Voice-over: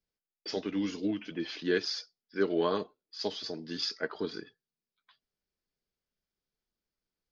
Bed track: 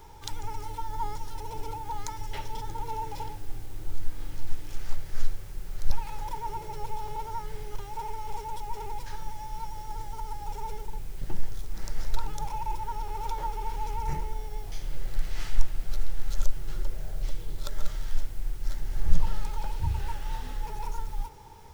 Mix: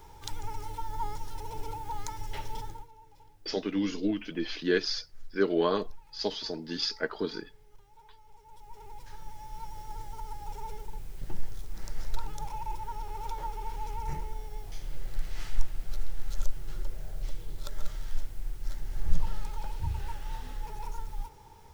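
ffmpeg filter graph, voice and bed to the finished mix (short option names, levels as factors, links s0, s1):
-filter_complex "[0:a]adelay=3000,volume=1.33[s0];[1:a]volume=5.96,afade=t=out:st=2.59:d=0.29:silence=0.105925,afade=t=in:st=8.39:d=1.4:silence=0.133352[s1];[s0][s1]amix=inputs=2:normalize=0"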